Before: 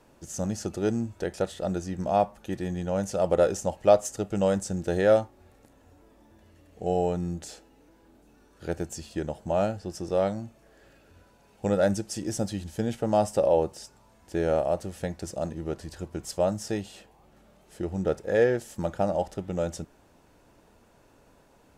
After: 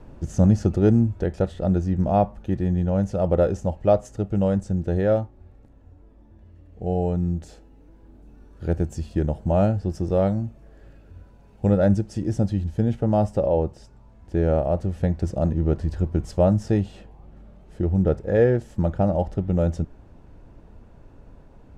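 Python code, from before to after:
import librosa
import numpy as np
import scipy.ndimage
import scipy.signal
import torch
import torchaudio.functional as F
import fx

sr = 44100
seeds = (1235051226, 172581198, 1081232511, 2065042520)

y = fx.high_shelf(x, sr, hz=8700.0, db=9.0, at=(7.02, 11.67))
y = fx.riaa(y, sr, side='playback')
y = fx.rider(y, sr, range_db=10, speed_s=2.0)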